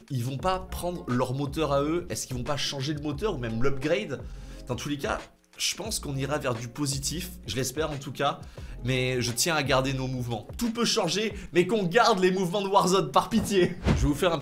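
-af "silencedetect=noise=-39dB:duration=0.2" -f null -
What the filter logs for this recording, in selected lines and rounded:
silence_start: 5.25
silence_end: 5.58 | silence_duration: 0.33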